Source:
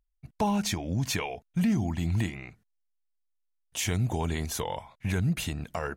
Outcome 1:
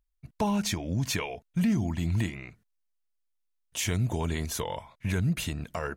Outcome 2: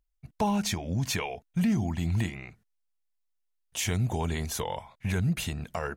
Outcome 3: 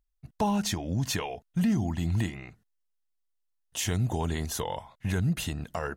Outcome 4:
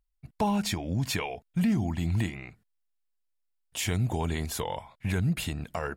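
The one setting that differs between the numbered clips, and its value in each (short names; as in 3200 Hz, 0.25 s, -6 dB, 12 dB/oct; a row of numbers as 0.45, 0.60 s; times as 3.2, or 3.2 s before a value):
notch, frequency: 780, 300, 2300, 6100 Hz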